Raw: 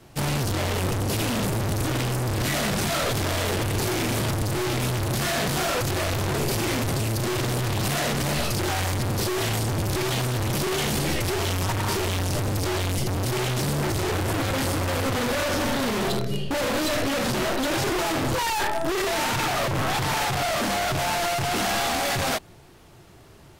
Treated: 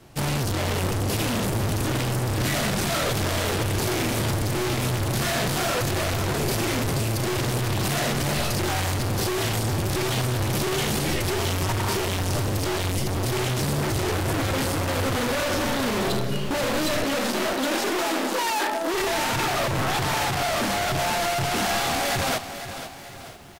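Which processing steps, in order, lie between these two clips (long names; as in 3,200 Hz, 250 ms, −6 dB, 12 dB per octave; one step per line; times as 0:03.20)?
0:17.04–0:18.94: Butterworth high-pass 190 Hz 96 dB per octave
repeating echo 934 ms, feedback 42%, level −19 dB
feedback echo at a low word length 494 ms, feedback 35%, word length 8 bits, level −11 dB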